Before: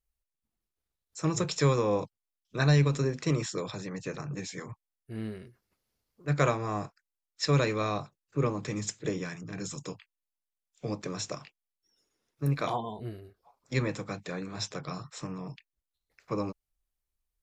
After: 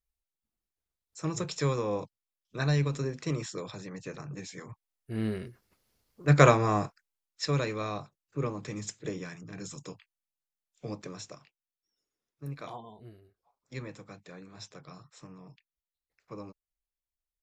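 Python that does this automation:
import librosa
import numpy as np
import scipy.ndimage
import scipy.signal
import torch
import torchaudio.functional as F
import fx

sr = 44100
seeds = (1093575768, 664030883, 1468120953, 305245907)

y = fx.gain(x, sr, db=fx.line((4.63, -4.0), (5.34, 7.0), (6.61, 7.0), (7.57, -4.0), (10.99, -4.0), (11.39, -11.0)))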